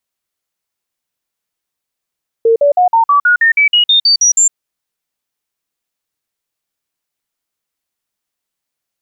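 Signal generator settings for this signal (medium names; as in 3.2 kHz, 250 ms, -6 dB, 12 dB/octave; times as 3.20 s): stepped sine 456 Hz up, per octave 3, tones 13, 0.11 s, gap 0.05 s -6 dBFS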